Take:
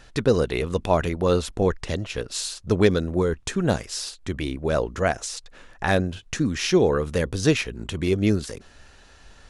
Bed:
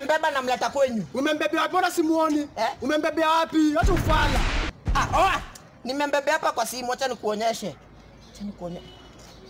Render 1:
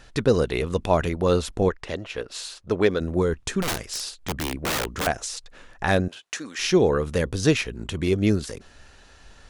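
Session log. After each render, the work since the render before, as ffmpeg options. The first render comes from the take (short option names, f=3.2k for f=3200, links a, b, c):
-filter_complex "[0:a]asettb=1/sr,asplit=3[a][b][c];[a]atrim=end=1.694[d];[b]atrim=start=1.69:end=3.01,asetpts=PTS-STARTPTS,afade=t=in:d=0.004:c=qsin,afade=t=out:st=1.316:d=0.004:c=qsin,bass=f=250:g=-9,treble=f=4k:g=-8[e];[c]atrim=start=3.006[f];[d][e]acrossfade=d=0.004:c1=hsin:c2=qsin[g];[g][f]acrossfade=d=0.004:c1=qsin:c2=hsin,asettb=1/sr,asplit=3[h][i][j];[h]atrim=end=3.624[k];[i]atrim=start=3.62:end=5.07,asetpts=PTS-STARTPTS,afade=t=in:d=0.004:c=qsin,afade=t=out:st=1.446:d=0.004:c=qsin,aeval=exprs='(mod(10.6*val(0)+1,2)-1)/10.6':c=same[l];[j]atrim=start=5.066[m];[k][l]acrossfade=d=0.004:c1=hsin:c2=qsin[n];[n][m]acrossfade=d=0.004:c1=qsin:c2=hsin,asettb=1/sr,asplit=3[o][p][q];[o]atrim=end=6.084[r];[p]atrim=start=6.08:end=6.59,asetpts=PTS-STARTPTS,afade=t=in:d=0.004:c=qsin,afade=t=out:st=0.506:d=0.004:c=qsin,highpass=600[s];[q]atrim=start=6.586[t];[r][s]acrossfade=d=0.004:c1=hsin:c2=qsin[u];[u][t]acrossfade=d=0.004:c1=qsin:c2=hsin"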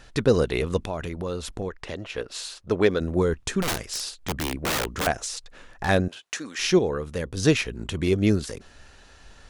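-filter_complex "[0:a]asettb=1/sr,asplit=3[a][b][c];[a]atrim=end=0.774[d];[b]atrim=start=0.77:end=2.16,asetpts=PTS-STARTPTS,afade=t=in:d=0.004:c=qsin,afade=t=out:st=1.386:d=0.004:c=qsin,acompressor=threshold=-29dB:ratio=3:attack=3.2:release=140:knee=1:detection=peak[e];[c]atrim=start=2.156[f];[d][e]acrossfade=d=0.004:c1=hsin:c2=qsin[g];[g][f]acrossfade=d=0.004:c1=qsin:c2=hsin,asettb=1/sr,asplit=3[h][i][j];[h]atrim=end=5.184[k];[i]atrim=start=5.18:end=5.89,asetpts=PTS-STARTPTS,afade=t=in:d=0.004:c=qsin,afade=t=out:st=0.706:d=0.004:c=qsin,volume=21dB,asoftclip=hard,volume=-21dB[l];[j]atrim=start=5.886[m];[k][l]acrossfade=d=0.004:c1=hsin:c2=qsin[n];[n][m]acrossfade=d=0.004:c1=qsin:c2=hsin,asplit=3[o][p][q];[o]atrim=end=6.792[r];[p]atrim=start=6.788:end=7.372,asetpts=PTS-STARTPTS,volume=-6dB[s];[q]atrim=start=7.368[t];[r][s]acrossfade=d=0.004:c1=hsin:c2=hsin[u];[u][t]acrossfade=d=0.004:c1=hsin:c2=hsin"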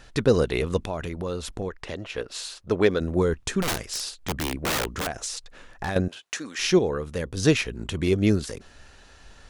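-filter_complex "[0:a]asettb=1/sr,asplit=3[a][b][c];[a]atrim=end=4.864[d];[b]atrim=start=4.86:end=5.96,asetpts=PTS-STARTPTS,afade=t=in:d=0.004:c=qsin,afade=t=out:st=1.096:d=0.004:c=qsin,acompressor=threshold=-25dB:ratio=6:attack=3.2:release=140:knee=1:detection=peak[e];[c]atrim=start=5.956[f];[d][e]acrossfade=d=0.004:c1=hsin:c2=qsin[g];[g][f]acrossfade=d=0.004:c1=qsin:c2=hsin"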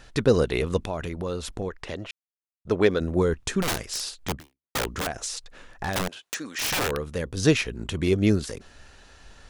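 -filter_complex "[0:a]asettb=1/sr,asplit=3[a][b][c];[a]atrim=end=5.934[d];[b]atrim=start=5.93:end=7.07,asetpts=PTS-STARTPTS,afade=t=in:d=0.004:c=qsin,afade=t=out:st=1.136:d=0.004:c=qsin,aeval=exprs='(mod(10*val(0)+1,2)-1)/10':c=same[e];[c]atrim=start=7.066[f];[d][e]acrossfade=d=0.004:c1=hsin:c2=qsin[g];[g][f]acrossfade=d=0.004:c1=qsin:c2=hsin,asplit=4[h][i][j][k];[h]atrim=end=2.11,asetpts=PTS-STARTPTS,afade=t=out:st=2.106:d=0.004:c=hsin[l];[i]atrim=start=2.11:end=2.65,asetpts=PTS-STARTPTS,volume=0[m];[j]atrim=start=2.65:end=4.75,asetpts=PTS-STARTPTS,afade=t=in:d=0.004:c=hsin,afade=t=out:st=1.69:d=0.41:c=exp[n];[k]atrim=start=4.75,asetpts=PTS-STARTPTS,afade=t=in:d=0.004:c=hsin[o];[l][m][n][o]concat=n=4:v=0:a=1"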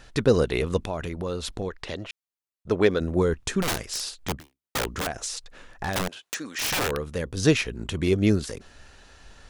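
-filter_complex "[0:a]asettb=1/sr,asplit=3[a][b][c];[a]atrim=end=1.424[d];[b]atrim=start=1.42:end=2.03,asetpts=PTS-STARTPTS,afade=t=in:d=0.004:c=qsin,afade=t=out:st=0.606:d=0.004:c=qsin,equalizer=f=4k:t=o:w=0.77:g=5.5[e];[c]atrim=start=2.026[f];[d][e]acrossfade=d=0.004:c1=hsin:c2=qsin[g];[g][f]acrossfade=d=0.004:c1=qsin:c2=hsin"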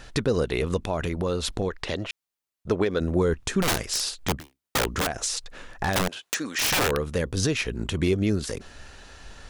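-filter_complex "[0:a]asplit=2[a][b];[b]acompressor=threshold=-29dB:ratio=6,volume=-2.5dB[c];[a][c]amix=inputs=2:normalize=0,alimiter=limit=-13.5dB:level=0:latency=1:release=165"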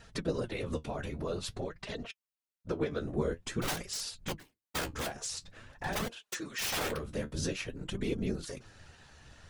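-af "afftfilt=real='hypot(re,im)*cos(2*PI*random(0))':imag='hypot(re,im)*sin(2*PI*random(1))':win_size=512:overlap=0.75,flanger=delay=4.3:depth=9.6:regen=48:speed=0.49:shape=sinusoidal"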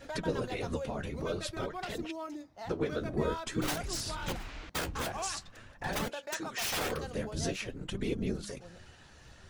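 -filter_complex "[1:a]volume=-19dB[a];[0:a][a]amix=inputs=2:normalize=0"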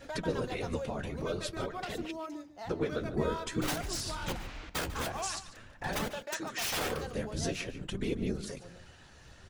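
-filter_complex "[0:a]asplit=2[a][b];[b]adelay=145.8,volume=-14dB,highshelf=f=4k:g=-3.28[c];[a][c]amix=inputs=2:normalize=0"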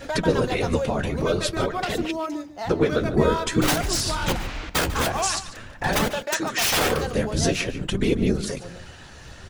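-af "volume=12dB"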